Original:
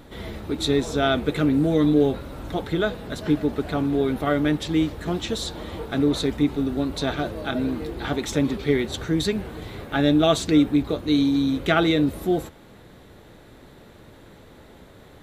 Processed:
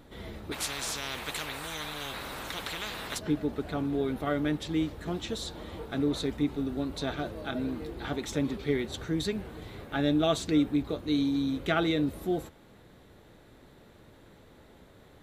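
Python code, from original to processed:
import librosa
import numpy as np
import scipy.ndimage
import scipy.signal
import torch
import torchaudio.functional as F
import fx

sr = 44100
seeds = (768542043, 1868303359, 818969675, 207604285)

y = fx.spectral_comp(x, sr, ratio=10.0, at=(0.51, 3.17), fade=0.02)
y = F.gain(torch.from_numpy(y), -7.5).numpy()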